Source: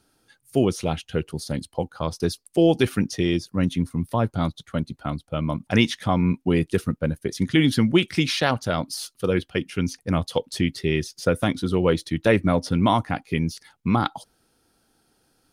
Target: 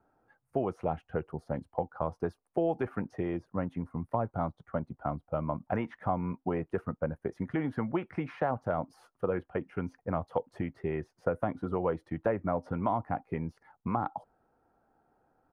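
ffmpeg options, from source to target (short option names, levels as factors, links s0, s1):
-filter_complex "[0:a]firequalizer=gain_entry='entry(300,0);entry(740,10);entry(3600,-27)':delay=0.05:min_phase=1,acrossover=split=520|1200|2700[s0][s1][s2][s3];[s0]acompressor=threshold=0.0562:ratio=4[s4];[s1]acompressor=threshold=0.0447:ratio=4[s5];[s2]acompressor=threshold=0.0158:ratio=4[s6];[s3]acompressor=threshold=0.002:ratio=4[s7];[s4][s5][s6][s7]amix=inputs=4:normalize=0,volume=0.473"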